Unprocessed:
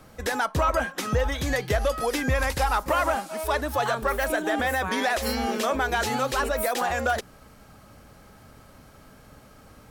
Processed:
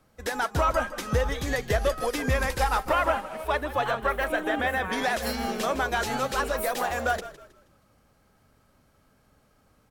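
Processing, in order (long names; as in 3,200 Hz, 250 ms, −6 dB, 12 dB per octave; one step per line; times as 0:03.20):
0:02.89–0:04.93: high shelf with overshoot 3,900 Hz −6.5 dB, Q 1.5
echo with shifted repeats 159 ms, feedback 45%, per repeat −42 Hz, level −10.5 dB
expander for the loud parts 1.5 to 1, over −46 dBFS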